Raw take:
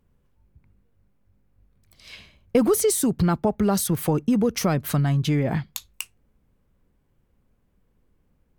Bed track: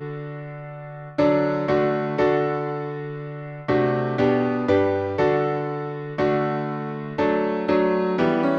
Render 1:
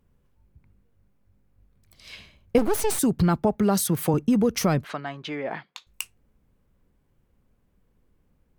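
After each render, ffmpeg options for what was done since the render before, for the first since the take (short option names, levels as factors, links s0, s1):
-filter_complex "[0:a]asettb=1/sr,asplit=3[s0][s1][s2];[s0]atrim=end=2.584[s3];[s1]atrim=start=2.58:end=2.99,asetpts=PTS-STARTPTS,afade=t=in:d=0.004:c=qsin,afade=t=out:st=0.406:d=0.004:c=qsin,aeval=exprs='max(val(0),0)':c=same[s4];[s2]atrim=start=2.986[s5];[s3][s4]acrossfade=d=0.004:c1=hsin:c2=qsin[s6];[s6][s5]acrossfade=d=0.004:c1=qsin:c2=hsin,asettb=1/sr,asplit=3[s7][s8][s9];[s7]atrim=end=3.574[s10];[s8]atrim=start=3.57:end=4.14,asetpts=PTS-STARTPTS,afade=t=in:d=0.004:c=qsin,afade=t=out:st=0.566:d=0.004:c=qsin,highpass=110[s11];[s9]atrim=start=4.136[s12];[s10][s11]acrossfade=d=0.004:c1=hsin:c2=qsin[s13];[s13][s12]acrossfade=d=0.004:c1=qsin:c2=hsin,asettb=1/sr,asplit=3[s14][s15][s16];[s14]atrim=end=4.844[s17];[s15]atrim=start=4.84:end=5.87,asetpts=PTS-STARTPTS,afade=t=in:d=0.004:c=qsin,afade=t=out:st=1.026:d=0.004:c=qsin,highpass=490,lowpass=3100[s18];[s16]atrim=start=5.866[s19];[s17][s18]acrossfade=d=0.004:c1=hsin:c2=qsin[s20];[s20][s19]acrossfade=d=0.004:c1=qsin:c2=hsin"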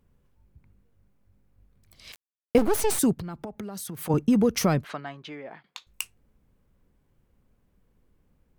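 -filter_complex "[0:a]asettb=1/sr,asplit=3[s0][s1][s2];[s0]atrim=end=2.124[s3];[s1]atrim=start=2.12:end=2.62,asetpts=PTS-STARTPTS,afade=t=in:d=0.004:c=qsin,afade=t=out:st=0.496:d=0.004:c=qsin,aeval=exprs='val(0)*gte(abs(val(0)),0.0211)':c=same[s4];[s2]atrim=start=2.616[s5];[s3][s4]acrossfade=d=0.004:c1=hsin:c2=qsin[s6];[s6][s5]acrossfade=d=0.004:c1=qsin:c2=hsin,asplit=3[s7][s8][s9];[s7]afade=t=out:st=3.13:d=0.02[s10];[s8]acompressor=threshold=0.0251:ratio=20:attack=3.2:release=140:knee=1:detection=peak,afade=t=in:st=3.13:d=0.02,afade=t=out:st=4.09:d=0.02[s11];[s9]afade=t=in:st=4.09:d=0.02[s12];[s10][s11][s12]amix=inputs=3:normalize=0,asplit=2[s13][s14];[s13]atrim=end=5.64,asetpts=PTS-STARTPTS,afade=t=out:st=4.62:d=1.02:silence=0.158489[s15];[s14]atrim=start=5.64,asetpts=PTS-STARTPTS,afade=t=in:d=0.004:c=hsin:silence=0.158489[s16];[s15][s16]concat=n=2:v=0:a=1"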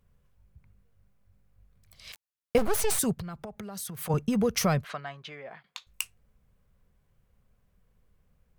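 -af "equalizer=f=300:t=o:w=0.68:g=-13,bandreject=f=880:w=12"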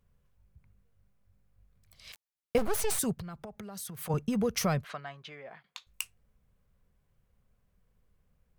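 -af "volume=0.668"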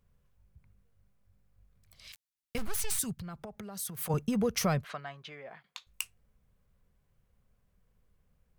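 -filter_complex "[0:a]asettb=1/sr,asplit=3[s0][s1][s2];[s0]atrim=end=2.074[s3];[s1]atrim=start=2.07:end=3.22,asetpts=PTS-STARTPTS,afade=t=in:d=0.004:c=qsin,afade=t=out:st=1.146:d=0.004:c=qsin,equalizer=f=540:t=o:w=2.1:g=-14.5[s4];[s2]atrim=start=3.216[s5];[s3][s4]acrossfade=d=0.004:c1=hsin:c2=qsin[s6];[s6][s5]acrossfade=d=0.004:c1=qsin:c2=hsin,asettb=1/sr,asplit=3[s7][s8][s9];[s7]atrim=end=3.794[s10];[s8]atrim=start=3.79:end=4.31,asetpts=PTS-STARTPTS,afade=t=in:d=0.004:c=qsin,afade=t=out:st=0.516:d=0.004:c=qsin,highshelf=f=6100:g=5.5[s11];[s9]atrim=start=4.306[s12];[s10][s11]acrossfade=d=0.004:c1=hsin:c2=qsin[s13];[s13][s12]acrossfade=d=0.004:c1=qsin:c2=hsin"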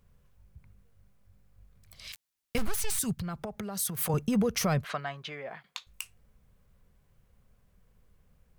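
-af "acontrast=62,alimiter=limit=0.112:level=0:latency=1:release=112"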